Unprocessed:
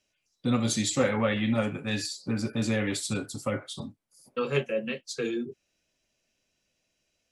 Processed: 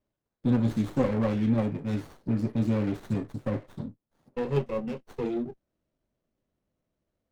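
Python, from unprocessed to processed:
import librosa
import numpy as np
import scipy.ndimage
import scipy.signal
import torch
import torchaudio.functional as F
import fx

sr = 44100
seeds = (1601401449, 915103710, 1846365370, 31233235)

y = fx.tilt_shelf(x, sr, db=7.0, hz=790.0)
y = fx.running_max(y, sr, window=17)
y = F.gain(torch.from_numpy(y), -3.5).numpy()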